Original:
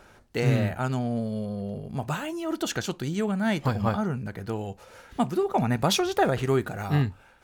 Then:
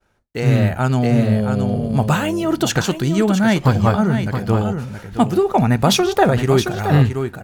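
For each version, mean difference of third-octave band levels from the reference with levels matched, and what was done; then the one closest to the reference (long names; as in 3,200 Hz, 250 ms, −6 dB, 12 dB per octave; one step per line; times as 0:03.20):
4.5 dB: downward expander −45 dBFS
single-tap delay 671 ms −8.5 dB
automatic gain control gain up to 13.5 dB
low-shelf EQ 150 Hz +4.5 dB
level −1.5 dB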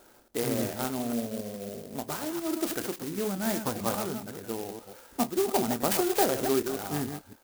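9.0 dB: delay that plays each chunk backwards 141 ms, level −7 dB
low shelf with overshoot 200 Hz −9 dB, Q 1.5
double-tracking delay 26 ms −13 dB
converter with an unsteady clock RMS 0.11 ms
level −3.5 dB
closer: first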